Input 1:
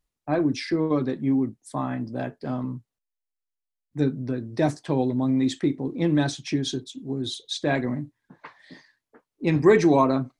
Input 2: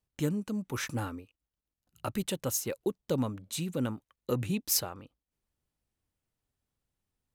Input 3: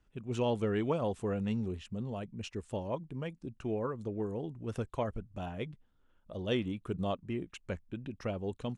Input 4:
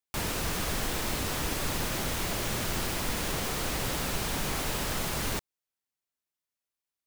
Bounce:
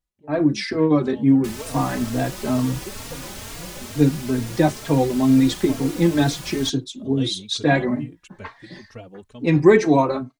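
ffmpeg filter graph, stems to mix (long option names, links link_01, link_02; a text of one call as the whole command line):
ffmpeg -i stem1.wav -i stem2.wav -i stem3.wav -i stem4.wav -filter_complex "[0:a]volume=-2.5dB[link_01];[1:a]lowpass=3000,afwtdn=0.0112,volume=-17.5dB,asplit=2[link_02][link_03];[2:a]highshelf=frequency=4800:gain=7,adelay=700,volume=-12dB[link_04];[3:a]equalizer=frequency=7000:width=0.61:gain=4,adelay=1300,volume=-14dB[link_05];[link_03]apad=whole_len=417961[link_06];[link_04][link_06]sidechaincompress=threshold=-58dB:ratio=8:attack=16:release=728[link_07];[link_01][link_02][link_07][link_05]amix=inputs=4:normalize=0,dynaudnorm=framelen=140:gausssize=5:maxgain=12dB,asplit=2[link_08][link_09];[link_09]adelay=3.7,afreqshift=2.2[link_10];[link_08][link_10]amix=inputs=2:normalize=1" out.wav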